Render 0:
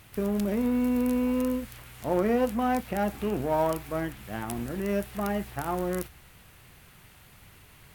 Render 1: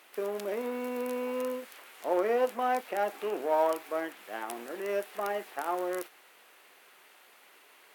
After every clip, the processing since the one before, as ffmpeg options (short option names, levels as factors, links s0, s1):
-af "highpass=f=370:w=0.5412,highpass=f=370:w=1.3066,highshelf=f=4700:g=-5.5"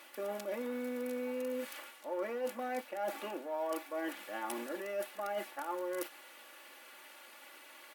-af "aecho=1:1:3.5:0.89,areverse,acompressor=threshold=0.0141:ratio=5,areverse,volume=1.12"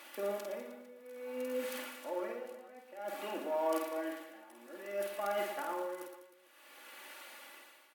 -filter_complex "[0:a]tremolo=f=0.56:d=0.93,asplit=2[s0][s1];[s1]aecho=0:1:50|115|199.5|309.4|452.2:0.631|0.398|0.251|0.158|0.1[s2];[s0][s2]amix=inputs=2:normalize=0,volume=1.19"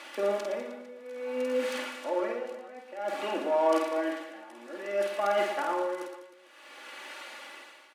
-af "highpass=190,lowpass=6900,volume=2.66"